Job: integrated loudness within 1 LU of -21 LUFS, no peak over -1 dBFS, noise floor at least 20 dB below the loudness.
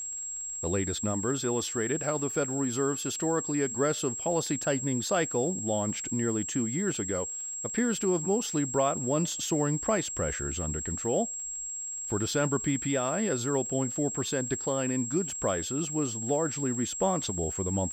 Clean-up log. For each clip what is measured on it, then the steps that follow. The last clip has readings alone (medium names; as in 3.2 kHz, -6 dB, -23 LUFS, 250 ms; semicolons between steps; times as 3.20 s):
tick rate 56 per s; steady tone 7.6 kHz; tone level -34 dBFS; loudness -29.0 LUFS; peak level -14.0 dBFS; loudness target -21.0 LUFS
-> de-click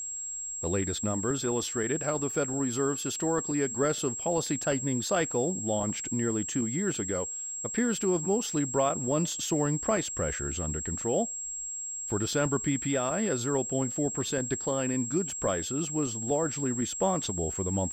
tick rate 0.39 per s; steady tone 7.6 kHz; tone level -34 dBFS
-> band-stop 7.6 kHz, Q 30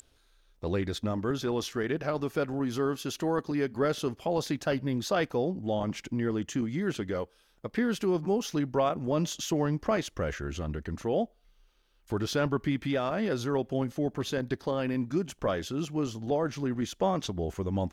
steady tone not found; loudness -31.0 LUFS; peak level -15.0 dBFS; loudness target -21.0 LUFS
-> trim +10 dB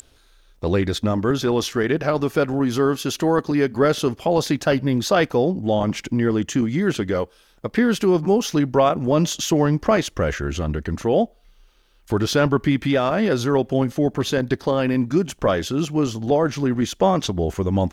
loudness -21.0 LUFS; peak level -5.0 dBFS; noise floor -56 dBFS